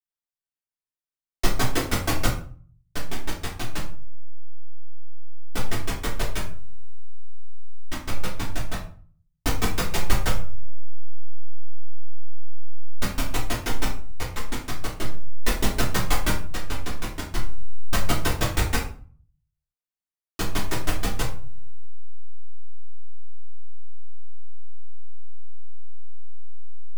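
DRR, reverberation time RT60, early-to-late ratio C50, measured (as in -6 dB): -5.5 dB, 0.45 s, 7.5 dB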